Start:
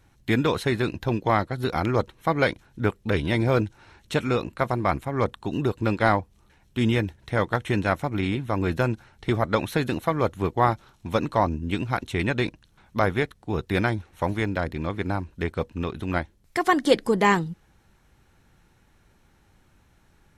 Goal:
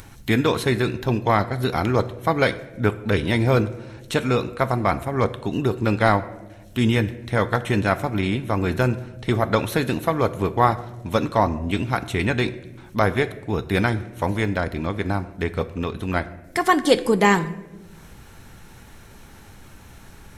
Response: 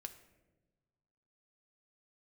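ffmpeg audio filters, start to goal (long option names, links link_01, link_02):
-filter_complex "[0:a]acompressor=mode=upward:threshold=-35dB:ratio=2.5,asplit=2[link_01][link_02];[1:a]atrim=start_sample=2205,highshelf=frequency=6400:gain=8[link_03];[link_02][link_03]afir=irnorm=-1:irlink=0,volume=10.5dB[link_04];[link_01][link_04]amix=inputs=2:normalize=0,volume=-6.5dB"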